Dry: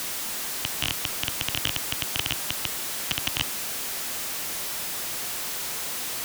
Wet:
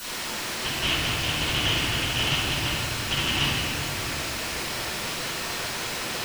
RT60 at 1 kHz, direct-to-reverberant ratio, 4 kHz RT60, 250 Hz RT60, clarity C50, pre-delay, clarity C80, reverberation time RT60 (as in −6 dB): 2.0 s, −15.5 dB, 1.4 s, 3.5 s, −3.5 dB, 3 ms, −1.5 dB, 2.3 s